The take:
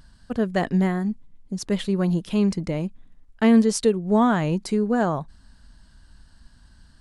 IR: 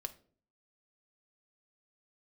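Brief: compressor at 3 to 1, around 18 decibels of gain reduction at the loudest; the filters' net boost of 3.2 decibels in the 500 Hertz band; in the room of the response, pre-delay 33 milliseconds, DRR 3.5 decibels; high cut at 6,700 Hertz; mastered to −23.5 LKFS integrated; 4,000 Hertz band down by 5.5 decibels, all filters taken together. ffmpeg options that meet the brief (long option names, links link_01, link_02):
-filter_complex "[0:a]lowpass=6700,equalizer=frequency=500:width_type=o:gain=4,equalizer=frequency=4000:width_type=o:gain=-7,acompressor=threshold=-36dB:ratio=3,asplit=2[link_01][link_02];[1:a]atrim=start_sample=2205,adelay=33[link_03];[link_02][link_03]afir=irnorm=-1:irlink=0,volume=-1.5dB[link_04];[link_01][link_04]amix=inputs=2:normalize=0,volume=10.5dB"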